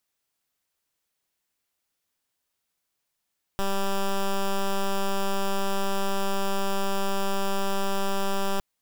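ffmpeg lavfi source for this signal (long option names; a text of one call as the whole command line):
ffmpeg -f lavfi -i "aevalsrc='0.0596*(2*lt(mod(196*t,1),0.09)-1)':duration=5.01:sample_rate=44100" out.wav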